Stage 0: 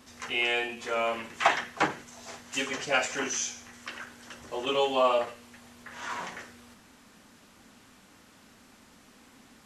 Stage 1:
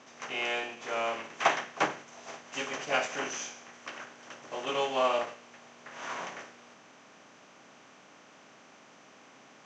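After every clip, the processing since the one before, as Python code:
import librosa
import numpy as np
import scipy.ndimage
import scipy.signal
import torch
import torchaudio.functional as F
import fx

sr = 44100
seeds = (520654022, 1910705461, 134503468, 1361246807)

y = fx.bin_compress(x, sr, power=0.6)
y = scipy.signal.sosfilt(scipy.signal.ellip(3, 1.0, 40, [120.0, 6400.0], 'bandpass', fs=sr, output='sos'), y)
y = fx.upward_expand(y, sr, threshold_db=-39.0, expansion=1.5)
y = y * 10.0 ** (-3.0 / 20.0)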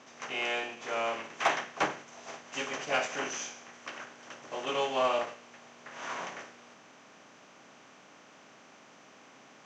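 y = 10.0 ** (-16.5 / 20.0) * np.tanh(x / 10.0 ** (-16.5 / 20.0))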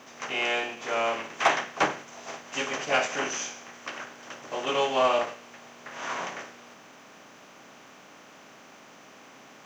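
y = fx.quant_dither(x, sr, seeds[0], bits=12, dither='none')
y = y * 10.0 ** (5.0 / 20.0)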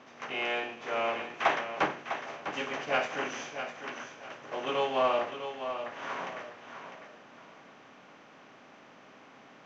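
y = fx.air_absorb(x, sr, metres=170.0)
y = fx.echo_feedback(y, sr, ms=652, feedback_pct=30, wet_db=-9)
y = y * 10.0 ** (-3.0 / 20.0)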